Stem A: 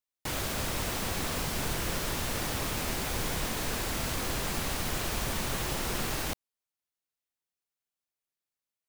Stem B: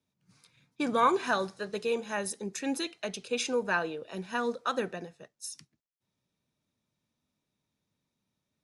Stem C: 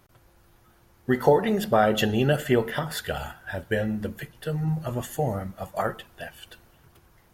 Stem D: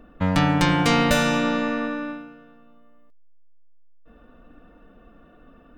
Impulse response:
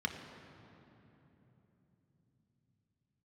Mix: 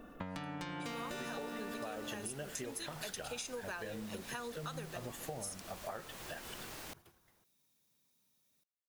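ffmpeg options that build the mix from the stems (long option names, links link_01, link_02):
-filter_complex "[0:a]adelay=600,volume=-12.5dB[link_01];[1:a]aemphasis=mode=production:type=75fm,volume=0dB[link_02];[2:a]agate=range=-9dB:threshold=-55dB:ratio=16:detection=peak,adelay=100,volume=-4dB[link_03];[3:a]volume=-1dB[link_04];[link_02][link_03][link_04]amix=inputs=3:normalize=0,acompressor=threshold=-28dB:ratio=6,volume=0dB[link_05];[link_01][link_05]amix=inputs=2:normalize=0,lowshelf=frequency=120:gain=-9.5,acompressor=threshold=-43dB:ratio=3"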